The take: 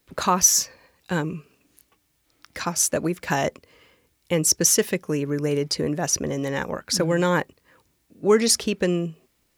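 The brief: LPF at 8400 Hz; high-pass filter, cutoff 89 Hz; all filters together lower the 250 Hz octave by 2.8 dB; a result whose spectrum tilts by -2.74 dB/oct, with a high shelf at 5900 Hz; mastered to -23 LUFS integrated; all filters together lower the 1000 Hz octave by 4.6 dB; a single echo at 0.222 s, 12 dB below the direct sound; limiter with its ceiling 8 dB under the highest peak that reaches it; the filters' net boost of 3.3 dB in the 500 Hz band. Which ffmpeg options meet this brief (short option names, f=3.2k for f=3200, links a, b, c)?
-af "highpass=89,lowpass=8.4k,equalizer=f=250:t=o:g=-6.5,equalizer=f=500:t=o:g=7.5,equalizer=f=1k:t=o:g=-8.5,highshelf=f=5.9k:g=8.5,alimiter=limit=-9.5dB:level=0:latency=1,aecho=1:1:222:0.251,volume=-1dB"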